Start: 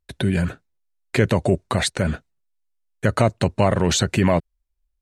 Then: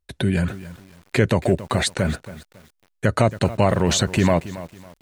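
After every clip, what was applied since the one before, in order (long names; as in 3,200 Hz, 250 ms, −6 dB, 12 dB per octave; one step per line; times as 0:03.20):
feedback echo at a low word length 276 ms, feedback 35%, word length 6 bits, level −15 dB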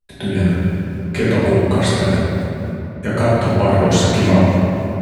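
rectangular room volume 150 cubic metres, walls hard, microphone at 1.3 metres
level −6 dB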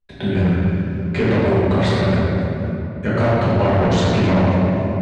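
gain into a clipping stage and back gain 13 dB
high-frequency loss of the air 140 metres
level +1 dB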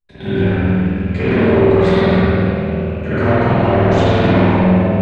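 loose part that buzzes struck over −29 dBFS, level −31 dBFS
spring reverb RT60 1.3 s, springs 49 ms, chirp 65 ms, DRR −9 dB
level −5.5 dB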